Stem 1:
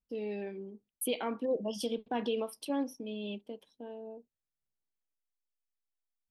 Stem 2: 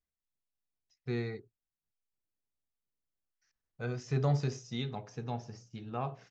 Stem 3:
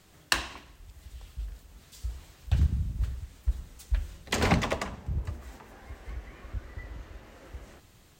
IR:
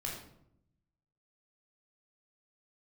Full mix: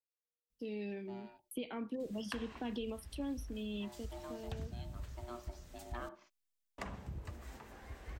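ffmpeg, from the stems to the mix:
-filter_complex "[0:a]equalizer=f=780:t=o:w=2.6:g=-10.5,adelay=500,volume=3dB[a];[1:a]aeval=exprs='val(0)*sin(2*PI*480*n/s)':c=same,highpass=f=320:p=1,volume=-3.5dB,afade=t=in:st=4.91:d=0.58:silence=0.281838[b];[2:a]acompressor=threshold=-32dB:ratio=2,adelay=2000,volume=-4dB,asplit=3[c][d][e];[c]atrim=end=6.09,asetpts=PTS-STARTPTS,afade=t=out:st=6.086:d=0.004:c=hsin[f];[d]atrim=start=6.09:end=6.78,asetpts=PTS-STARTPTS,volume=0[g];[e]atrim=start=6.78,asetpts=PTS-STARTPTS,afade=t=in:d=0.004:c=hsin[h];[f][g][h]concat=n=3:v=0:a=1[i];[a][b][i]amix=inputs=3:normalize=0,acrossover=split=200|2600[j][k][l];[j]acompressor=threshold=-43dB:ratio=4[m];[k]acompressor=threshold=-40dB:ratio=4[n];[l]acompressor=threshold=-55dB:ratio=4[o];[m][n][o]amix=inputs=3:normalize=0"

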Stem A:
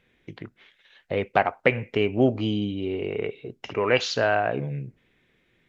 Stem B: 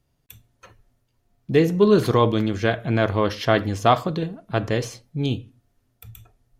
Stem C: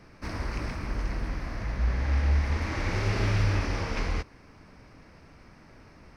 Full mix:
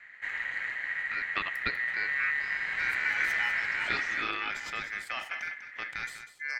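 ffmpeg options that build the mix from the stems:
-filter_complex "[0:a]lowpass=2.9k,volume=-10.5dB[a];[1:a]alimiter=limit=-15dB:level=0:latency=1:release=11,adelay=1250,volume=-9dB,asplit=2[b][c];[c]volume=-10.5dB[d];[2:a]tiltshelf=f=820:g=9.5,bandreject=f=1.6k:w=5.6,volume=-3dB[e];[d]aecho=0:1:196:1[f];[a][b][e][f]amix=inputs=4:normalize=0,acrossover=split=170[g][h];[g]acompressor=threshold=-33dB:ratio=3[i];[i][h]amix=inputs=2:normalize=0,aeval=exprs='val(0)*sin(2*PI*1900*n/s)':c=same"

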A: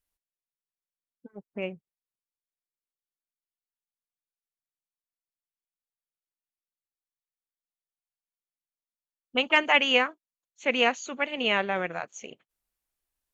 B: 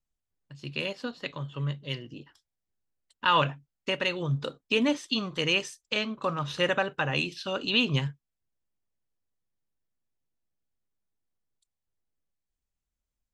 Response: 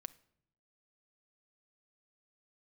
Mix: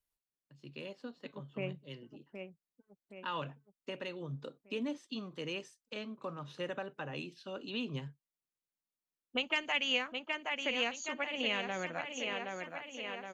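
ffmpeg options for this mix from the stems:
-filter_complex "[0:a]volume=-5.5dB,asplit=3[a][b][c];[b]volume=-15.5dB[d];[c]volume=-7.5dB[e];[1:a]highpass=190,tiltshelf=f=720:g=5,volume=-12dB[f];[2:a]atrim=start_sample=2205[g];[d][g]afir=irnorm=-1:irlink=0[h];[e]aecho=0:1:770|1540|2310|3080|3850|4620|5390|6160:1|0.54|0.292|0.157|0.085|0.0459|0.0248|0.0134[i];[a][f][h][i]amix=inputs=4:normalize=0,acrossover=split=170|3000[j][k][l];[k]acompressor=threshold=-34dB:ratio=6[m];[j][m][l]amix=inputs=3:normalize=0"

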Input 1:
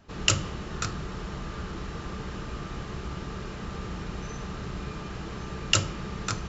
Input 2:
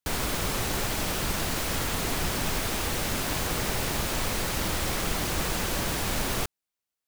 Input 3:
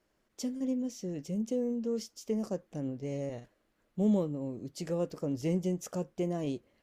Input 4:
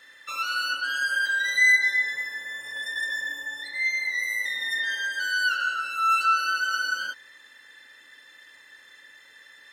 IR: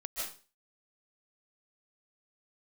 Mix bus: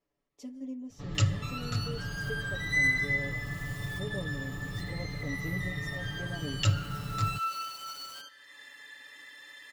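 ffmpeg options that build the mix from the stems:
-filter_complex "[0:a]equalizer=f=100:t=o:w=0.67:g=10,equalizer=f=400:t=o:w=0.67:g=-7,equalizer=f=1k:t=o:w=0.67:g=-7,equalizer=f=2.5k:t=o:w=0.67:g=-7,equalizer=f=6.3k:t=o:w=0.67:g=-11,adelay=900,volume=-5.5dB[a];[1:a]highpass=480,alimiter=level_in=5.5dB:limit=-24dB:level=0:latency=1:release=22,volume=-5.5dB,acrusher=bits=4:mix=0:aa=0.5,adelay=1750,volume=-7dB[b];[2:a]highshelf=f=4.2k:g=-6.5,volume=-10.5dB,asplit=3[c][d][e];[d]volume=-23.5dB[f];[3:a]acompressor=mode=upward:threshold=-27dB:ratio=2.5,adelay=1150,volume=-13.5dB,asplit=2[g][h];[h]volume=-16dB[i];[e]apad=whole_len=389012[j];[b][j]sidechaincompress=threshold=-53dB:ratio=10:attack=16:release=448[k];[4:a]atrim=start_sample=2205[l];[f][i]amix=inputs=2:normalize=0[m];[m][l]afir=irnorm=-1:irlink=0[n];[a][k][c][g][n]amix=inputs=5:normalize=0,asuperstop=centerf=1500:order=4:qfactor=7.2,aecho=1:1:7:0.87"

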